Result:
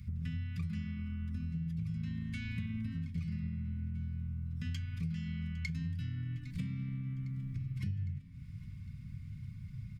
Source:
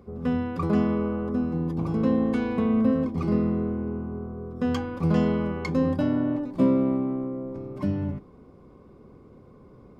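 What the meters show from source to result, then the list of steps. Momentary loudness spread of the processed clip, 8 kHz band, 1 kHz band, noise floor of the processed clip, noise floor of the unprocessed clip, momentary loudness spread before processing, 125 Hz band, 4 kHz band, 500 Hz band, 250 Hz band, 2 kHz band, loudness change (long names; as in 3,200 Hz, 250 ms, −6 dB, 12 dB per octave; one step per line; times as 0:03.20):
8 LU, can't be measured, below −30 dB, −48 dBFS, −51 dBFS, 10 LU, −5.0 dB, −7.0 dB, below −40 dB, −18.0 dB, −9.0 dB, −13.5 dB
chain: elliptic band-stop filter 160–2,000 Hz, stop band 60 dB
parametric band 100 Hz +8.5 dB 0.54 octaves
downward compressor 6 to 1, threshold −43 dBFS, peak gain reduction 21 dB
repeating echo 807 ms, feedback 59%, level −19.5 dB
level +7 dB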